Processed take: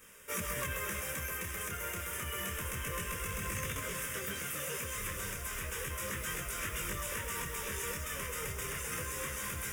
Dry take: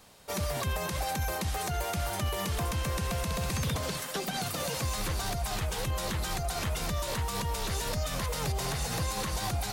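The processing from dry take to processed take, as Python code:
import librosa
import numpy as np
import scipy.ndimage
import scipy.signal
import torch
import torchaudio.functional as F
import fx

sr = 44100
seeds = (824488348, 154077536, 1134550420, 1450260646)

p1 = fx.quant_float(x, sr, bits=2)
p2 = 10.0 ** (-27.5 / 20.0) * np.tanh(p1 / 10.0 ** (-27.5 / 20.0))
p3 = fx.tilt_shelf(p2, sr, db=-6.5, hz=770.0)
p4 = fx.fixed_phaser(p3, sr, hz=1800.0, stages=4)
p5 = p4 + fx.echo_single(p4, sr, ms=129, db=-8.0, dry=0)
p6 = fx.rider(p5, sr, range_db=10, speed_s=2.0)
p7 = fx.peak_eq(p6, sr, hz=490.0, db=9.0, octaves=1.0)
p8 = p7 + 10.0 ** (-8.0 / 20.0) * np.pad(p7, (int(551 * sr / 1000.0), 0))[:len(p7)]
y = fx.detune_double(p8, sr, cents=10)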